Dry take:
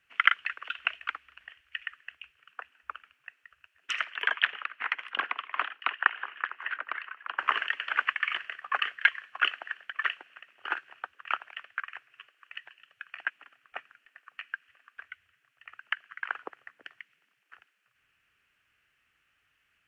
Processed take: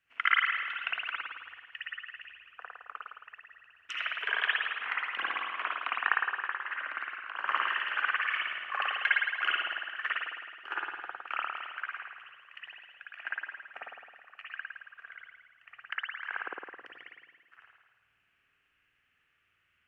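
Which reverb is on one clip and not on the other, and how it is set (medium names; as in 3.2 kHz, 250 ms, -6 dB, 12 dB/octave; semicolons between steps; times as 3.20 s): spring tank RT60 1.4 s, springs 53 ms, chirp 70 ms, DRR -6.5 dB; trim -8 dB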